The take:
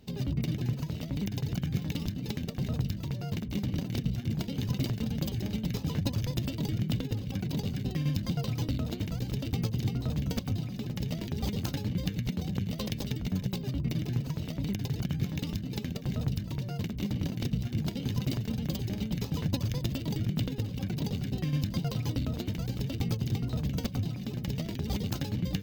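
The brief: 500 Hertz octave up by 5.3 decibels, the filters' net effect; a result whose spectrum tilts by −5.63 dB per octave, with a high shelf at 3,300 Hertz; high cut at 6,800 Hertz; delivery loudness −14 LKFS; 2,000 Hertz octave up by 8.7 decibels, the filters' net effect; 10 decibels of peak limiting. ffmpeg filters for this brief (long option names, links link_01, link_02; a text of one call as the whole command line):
ffmpeg -i in.wav -af "lowpass=6800,equalizer=frequency=500:width_type=o:gain=6,equalizer=frequency=2000:width_type=o:gain=7.5,highshelf=frequency=3300:gain=8.5,volume=18.5dB,alimiter=limit=-2.5dB:level=0:latency=1" out.wav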